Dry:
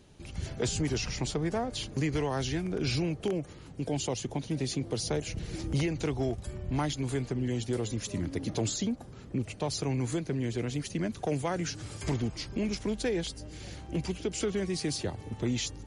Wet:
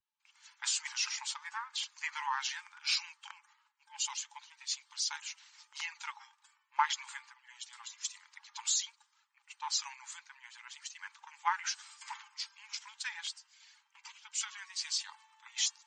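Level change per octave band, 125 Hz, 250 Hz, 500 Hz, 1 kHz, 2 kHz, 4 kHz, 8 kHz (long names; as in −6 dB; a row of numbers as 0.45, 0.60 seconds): below −40 dB, below −40 dB, below −40 dB, +1.5 dB, +0.5 dB, +1.5 dB, +2.0 dB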